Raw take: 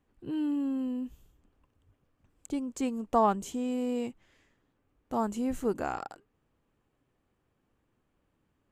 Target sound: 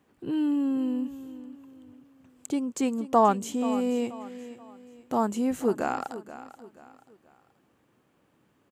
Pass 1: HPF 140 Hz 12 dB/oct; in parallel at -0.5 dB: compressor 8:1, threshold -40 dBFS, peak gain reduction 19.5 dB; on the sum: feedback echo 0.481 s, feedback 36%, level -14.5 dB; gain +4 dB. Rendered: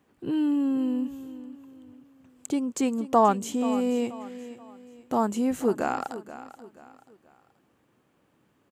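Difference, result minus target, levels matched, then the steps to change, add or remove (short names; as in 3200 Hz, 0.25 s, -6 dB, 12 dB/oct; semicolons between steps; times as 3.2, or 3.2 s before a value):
compressor: peak gain reduction -8.5 dB
change: compressor 8:1, threshold -49.5 dBFS, peak gain reduction 28 dB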